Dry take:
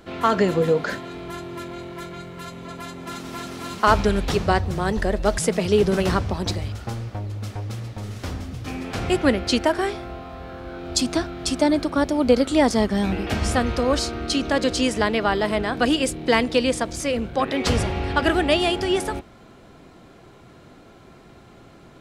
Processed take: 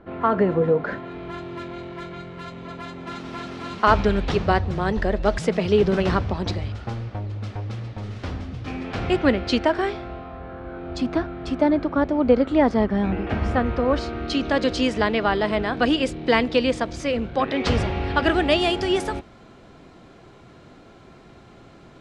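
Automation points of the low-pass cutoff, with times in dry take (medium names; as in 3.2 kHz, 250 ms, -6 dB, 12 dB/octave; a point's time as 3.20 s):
0.78 s 1.5 kHz
1.47 s 3.9 kHz
10.01 s 3.9 kHz
10.42 s 2 kHz
13.83 s 2 kHz
14.46 s 4.3 kHz
18.06 s 4.3 kHz
18.69 s 7.2 kHz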